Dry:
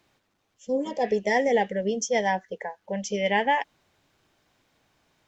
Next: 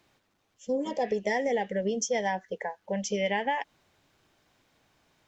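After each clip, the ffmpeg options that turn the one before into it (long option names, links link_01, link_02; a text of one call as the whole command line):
ffmpeg -i in.wav -af "acompressor=threshold=-24dB:ratio=6" out.wav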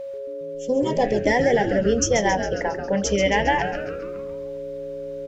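ffmpeg -i in.wav -filter_complex "[0:a]bandreject=frequency=86.15:width_type=h:width=4,bandreject=frequency=172.3:width_type=h:width=4,bandreject=frequency=258.45:width_type=h:width=4,bandreject=frequency=344.6:width_type=h:width=4,bandreject=frequency=430.75:width_type=h:width=4,bandreject=frequency=516.9:width_type=h:width=4,bandreject=frequency=603.05:width_type=h:width=4,bandreject=frequency=689.2:width_type=h:width=4,bandreject=frequency=775.35:width_type=h:width=4,bandreject=frequency=861.5:width_type=h:width=4,aeval=exprs='val(0)+0.0126*sin(2*PI*550*n/s)':channel_layout=same,asplit=8[link_01][link_02][link_03][link_04][link_05][link_06][link_07][link_08];[link_02]adelay=136,afreqshift=-130,volume=-8dB[link_09];[link_03]adelay=272,afreqshift=-260,volume=-12.6dB[link_10];[link_04]adelay=408,afreqshift=-390,volume=-17.2dB[link_11];[link_05]adelay=544,afreqshift=-520,volume=-21.7dB[link_12];[link_06]adelay=680,afreqshift=-650,volume=-26.3dB[link_13];[link_07]adelay=816,afreqshift=-780,volume=-30.9dB[link_14];[link_08]adelay=952,afreqshift=-910,volume=-35.5dB[link_15];[link_01][link_09][link_10][link_11][link_12][link_13][link_14][link_15]amix=inputs=8:normalize=0,volume=8dB" out.wav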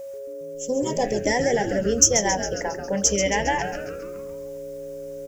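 ffmpeg -i in.wav -af "aexciter=amount=5.4:drive=6.5:freq=5600,volume=-3dB" out.wav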